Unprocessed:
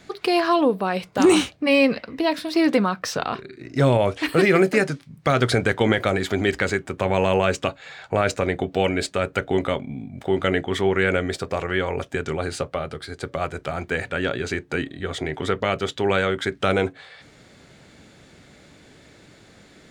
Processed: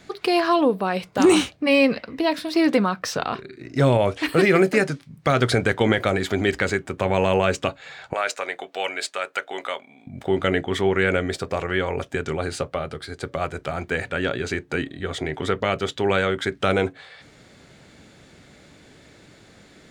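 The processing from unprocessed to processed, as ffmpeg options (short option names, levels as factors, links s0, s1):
-filter_complex "[0:a]asettb=1/sr,asplit=3[s0][s1][s2];[s0]atrim=end=8.134[s3];[s1]atrim=start=8.13:end=10.07,asetpts=PTS-STARTPTS,afade=t=in:d=0.004:c=qsin,afade=t=out:st=1.936:d=0.004:c=qsin,highpass=770[s4];[s2]atrim=start=10.066[s5];[s3][s4]acrossfade=d=0.004:c1=hsin:c2=qsin[s6];[s6][s5]acrossfade=d=0.004:c1=qsin:c2=hsin"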